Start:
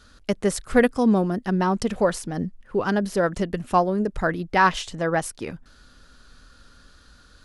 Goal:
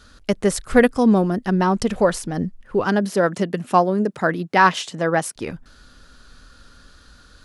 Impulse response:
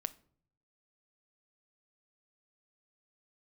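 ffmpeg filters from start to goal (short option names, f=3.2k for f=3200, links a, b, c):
-filter_complex "[0:a]asettb=1/sr,asplit=3[a][b][c];[a]atrim=end=2.854[d];[b]atrim=start=2.85:end=5.36,asetpts=PTS-STARTPTS,afade=t=in:d=0.004:c=qsin,afade=t=out:st=2.506:d=0.004:c=qsin,highpass=f=140:w=0.5412,highpass=f=140:w=1.3066[e];[c]atrim=start=5.356[f];[d][e]acrossfade=d=0.004:c1=hsin:c2=qsin[g];[g][f]acrossfade=d=0.004:c1=qsin:c2=hsin,volume=3.5dB"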